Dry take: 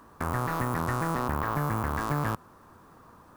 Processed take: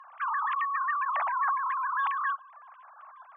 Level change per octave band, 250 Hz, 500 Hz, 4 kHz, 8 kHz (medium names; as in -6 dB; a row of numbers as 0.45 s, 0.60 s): under -40 dB, -17.0 dB, no reading, under -35 dB